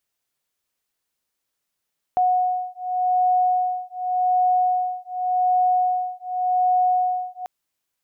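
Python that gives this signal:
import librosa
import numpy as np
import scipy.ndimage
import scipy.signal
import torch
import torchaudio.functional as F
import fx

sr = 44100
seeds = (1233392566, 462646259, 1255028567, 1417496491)

y = fx.two_tone_beats(sr, length_s=5.29, hz=731.0, beat_hz=0.87, level_db=-21.0)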